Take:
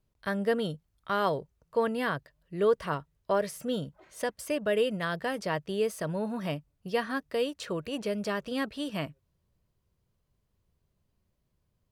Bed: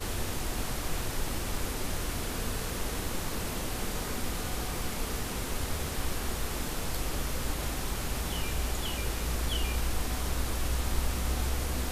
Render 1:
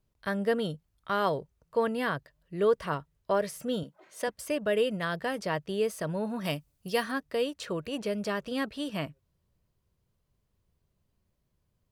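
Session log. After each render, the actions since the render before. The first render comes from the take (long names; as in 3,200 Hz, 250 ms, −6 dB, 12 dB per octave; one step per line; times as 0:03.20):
0:03.83–0:04.28: high-pass filter 220 Hz
0:06.44–0:07.10: high-shelf EQ 2,900 Hz → 5,100 Hz +12 dB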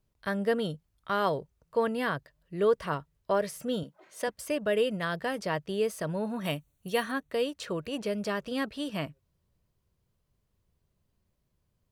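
0:06.35–0:07.33: Butterworth band-reject 5,000 Hz, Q 4.6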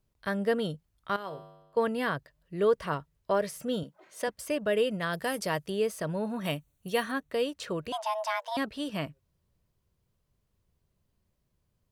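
0:01.16–0:01.77: tuned comb filter 51 Hz, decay 1.1 s, harmonics odd, mix 80%
0:05.13–0:05.70: parametric band 12,000 Hz +13 dB 1.5 octaves
0:07.92–0:08.57: frequency shifter +440 Hz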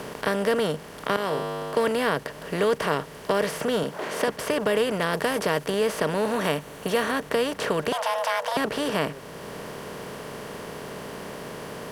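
compressor on every frequency bin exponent 0.4
multiband upward and downward compressor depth 40%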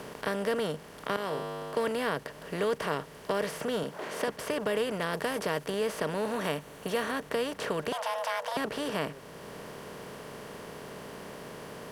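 level −6.5 dB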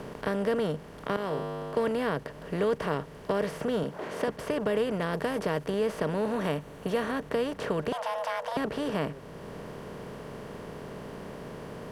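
spectral tilt −2 dB per octave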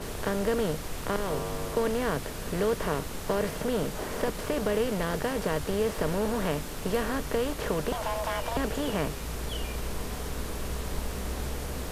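mix in bed −4 dB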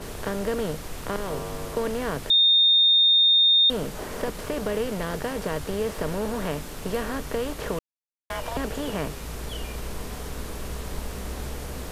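0:02.30–0:03.70: beep over 3,660 Hz −14.5 dBFS
0:07.79–0:08.30: silence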